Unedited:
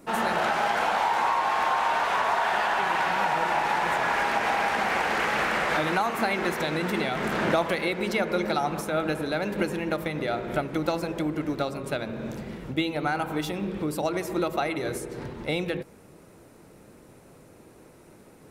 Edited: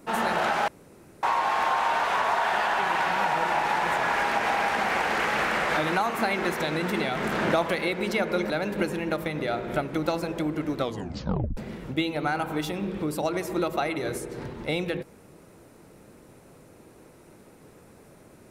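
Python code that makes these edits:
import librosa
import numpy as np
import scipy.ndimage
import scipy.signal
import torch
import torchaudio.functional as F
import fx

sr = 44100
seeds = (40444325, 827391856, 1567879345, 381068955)

y = fx.edit(x, sr, fx.room_tone_fill(start_s=0.68, length_s=0.55),
    fx.cut(start_s=8.5, length_s=0.8),
    fx.tape_stop(start_s=11.58, length_s=0.79), tone=tone)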